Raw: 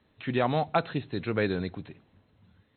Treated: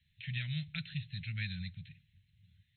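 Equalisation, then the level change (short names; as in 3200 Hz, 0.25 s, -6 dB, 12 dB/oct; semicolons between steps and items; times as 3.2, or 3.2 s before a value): inverse Chebyshev band-stop 270–1200 Hz, stop band 40 dB; -2.5 dB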